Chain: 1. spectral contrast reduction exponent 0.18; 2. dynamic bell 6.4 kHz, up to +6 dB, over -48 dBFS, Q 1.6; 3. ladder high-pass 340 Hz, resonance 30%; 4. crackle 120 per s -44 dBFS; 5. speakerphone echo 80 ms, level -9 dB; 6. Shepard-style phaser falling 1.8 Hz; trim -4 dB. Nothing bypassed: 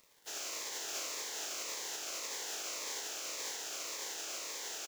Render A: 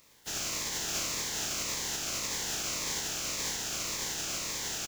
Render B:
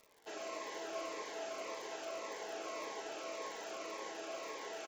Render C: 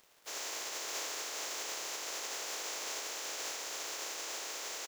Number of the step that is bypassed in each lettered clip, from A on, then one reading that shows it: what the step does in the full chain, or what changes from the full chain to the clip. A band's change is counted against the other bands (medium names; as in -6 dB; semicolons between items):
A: 3, 250 Hz band +6.5 dB; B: 1, 8 kHz band -18.0 dB; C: 6, 1 kHz band +2.5 dB